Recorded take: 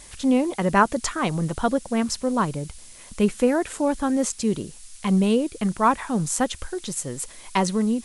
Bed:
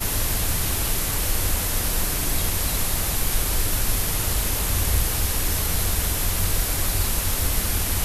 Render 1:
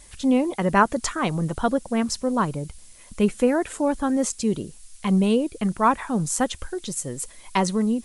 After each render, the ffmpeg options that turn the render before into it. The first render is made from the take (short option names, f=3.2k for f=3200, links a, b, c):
-af "afftdn=nr=6:nf=-45"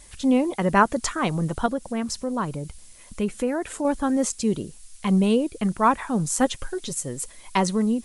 -filter_complex "[0:a]asettb=1/sr,asplit=3[a][b][c];[a]atrim=end=1.664[d];[b]atrim=start=1.66:end=3.85,asetpts=PTS-STARTPTS,afade=t=in:d=0.004:c=qsin,afade=t=out:st=2.186:d=0.004:c=qsin,acompressor=threshold=-29dB:ratio=1.5:attack=3.2:release=140:knee=1:detection=peak[e];[c]atrim=start=3.846[f];[d][e]acrossfade=d=0.004:c1=hsin:c2=qsin[g];[g][f]acrossfade=d=0.004:c1=qsin:c2=hsin,asettb=1/sr,asplit=3[h][i][j];[h]atrim=end=6.394[k];[i]atrim=start=6.39:end=6.93,asetpts=PTS-STARTPTS,afade=t=in:d=0.004:c=qsin,afade=t=out:st=0.536:d=0.004:c=qsin,aecho=1:1:7.4:0.53,atrim=end_sample=23814[l];[j]atrim=start=6.926[m];[k][l]acrossfade=d=0.004:c1=hsin:c2=qsin[n];[n][m]acrossfade=d=0.004:c1=qsin:c2=hsin"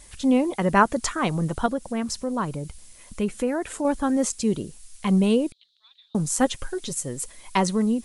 -filter_complex "[0:a]asettb=1/sr,asplit=3[a][b][c];[a]atrim=end=5.524[d];[b]atrim=start=5.52:end=6.15,asetpts=PTS-STARTPTS,afade=t=in:d=0.004:c=qsin,afade=t=out:st=0.626:d=0.004:c=qsin,asuperpass=centerf=3800:order=4:qfactor=5.4[e];[c]atrim=start=6.146[f];[d][e]acrossfade=d=0.004:c1=hsin:c2=qsin[g];[g][f]acrossfade=d=0.004:c1=qsin:c2=hsin"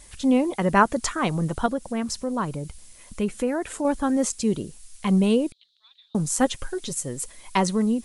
-af anull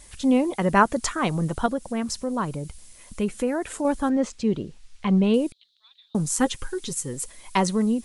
-filter_complex "[0:a]asettb=1/sr,asplit=3[a][b][c];[a]atrim=end=4.094[d];[b]atrim=start=4.09:end=5.34,asetpts=PTS-STARTPTS,afade=t=in:d=0.004:c=qsin,afade=t=out:st=1.246:d=0.004:c=qsin,lowpass=3.7k[e];[c]atrim=start=5.336[f];[d][e]acrossfade=d=0.004:c1=hsin:c2=qsin[g];[g][f]acrossfade=d=0.004:c1=qsin:c2=hsin,asettb=1/sr,asplit=3[h][i][j];[h]atrim=end=6.364[k];[i]atrim=start=6.36:end=7.14,asetpts=PTS-STARTPTS,afade=t=in:d=0.004:c=qsin,afade=t=out:st=0.776:d=0.004:c=qsin,asuperstop=centerf=640:order=8:qfactor=2.6[l];[j]atrim=start=7.136[m];[k][l]acrossfade=d=0.004:c1=hsin:c2=qsin[n];[n][m]acrossfade=d=0.004:c1=qsin:c2=hsin"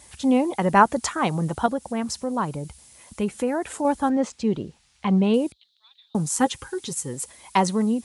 -af "highpass=f=55:w=0.5412,highpass=f=55:w=1.3066,equalizer=f=830:t=o:w=0.43:g=6"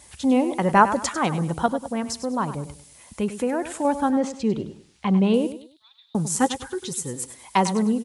-af "aecho=1:1:99|198|297:0.251|0.0779|0.0241"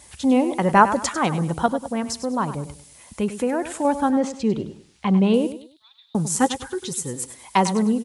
-af "volume=1.5dB"